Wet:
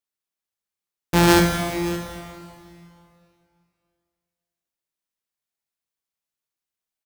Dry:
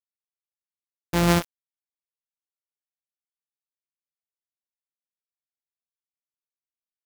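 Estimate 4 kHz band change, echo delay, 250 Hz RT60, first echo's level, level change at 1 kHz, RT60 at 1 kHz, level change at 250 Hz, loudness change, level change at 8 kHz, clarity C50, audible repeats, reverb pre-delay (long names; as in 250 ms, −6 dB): +7.0 dB, 563 ms, 2.4 s, −16.0 dB, +7.0 dB, 2.5 s, +6.5 dB, +3.0 dB, +7.0 dB, 3.5 dB, 1, 4 ms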